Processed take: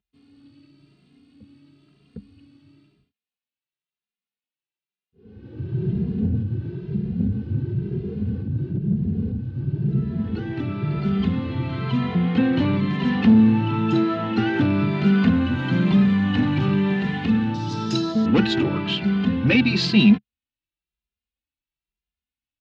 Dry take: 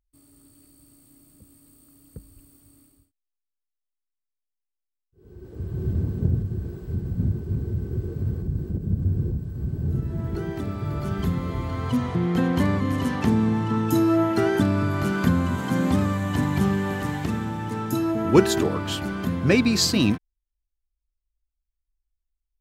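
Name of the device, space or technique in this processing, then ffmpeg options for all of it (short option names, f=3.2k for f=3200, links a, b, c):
barber-pole flanger into a guitar amplifier: -filter_complex "[0:a]asettb=1/sr,asplit=3[a][b][c];[a]atrim=end=17.544[d];[b]atrim=start=17.54:end=18.26,asetpts=PTS-STARTPTS,afade=t=in:d=0.004:c=qsin,afade=t=out:st=0.716:d=0.004:c=qsin,highshelf=f=3.6k:t=q:w=3:g=13.5[e];[c]atrim=start=18.256[f];[d][e]acrossfade=d=0.004:c1=hsin:c2=qsin[g];[g][f]acrossfade=d=0.004:c1=qsin:c2=hsin,asplit=2[h][i];[i]adelay=2.5,afreqshift=1[j];[h][j]amix=inputs=2:normalize=1,asoftclip=type=tanh:threshold=-18.5dB,highpass=110,equalizer=f=130:t=q:w=4:g=5,equalizer=f=210:t=q:w=4:g=8,equalizer=f=610:t=q:w=4:g=-6,equalizer=f=1.1k:t=q:w=4:g=-5,equalizer=f=2.7k:t=q:w=4:g=8,equalizer=f=3.9k:t=q:w=4:g=4,lowpass=f=4.2k:w=0.5412,lowpass=f=4.2k:w=1.3066,volume=5.5dB"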